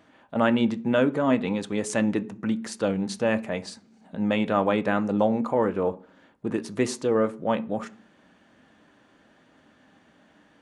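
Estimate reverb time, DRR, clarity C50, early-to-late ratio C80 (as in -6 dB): 0.40 s, 10.0 dB, 20.5 dB, 25.0 dB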